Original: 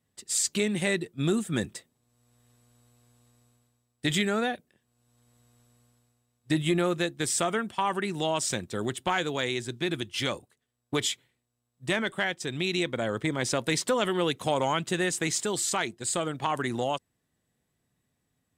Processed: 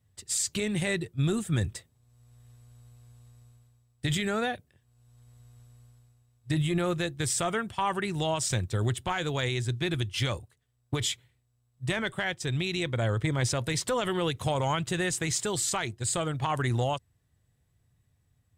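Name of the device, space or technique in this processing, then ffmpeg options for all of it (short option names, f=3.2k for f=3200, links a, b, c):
car stereo with a boomy subwoofer: -af "lowshelf=f=150:t=q:w=1.5:g=12,alimiter=limit=-18.5dB:level=0:latency=1:release=45"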